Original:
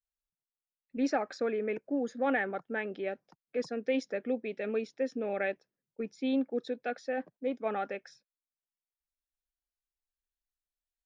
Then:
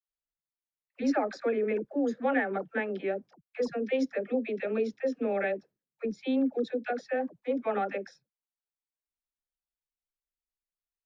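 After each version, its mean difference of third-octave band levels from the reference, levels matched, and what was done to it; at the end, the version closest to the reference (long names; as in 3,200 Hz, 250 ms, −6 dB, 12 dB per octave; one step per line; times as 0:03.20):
4.5 dB: noise gate −57 dBFS, range −10 dB
high-shelf EQ 3,700 Hz −7.5 dB
in parallel at +2 dB: brickwall limiter −26.5 dBFS, peak gain reduction 7.5 dB
on the sum: all-pass dispersion lows, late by 68 ms, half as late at 540 Hz
level −2.5 dB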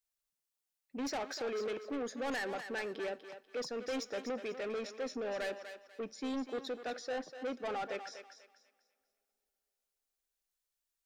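9.5 dB: bass and treble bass −7 dB, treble +5 dB
soft clipping −36.5 dBFS, distortion −7 dB
on a send: feedback echo with a high-pass in the loop 245 ms, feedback 31%, high-pass 550 Hz, level −8.5 dB
on the sum: coupled-rooms reverb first 0.53 s, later 3.6 s, from −19 dB, DRR 20 dB
level +2 dB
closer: first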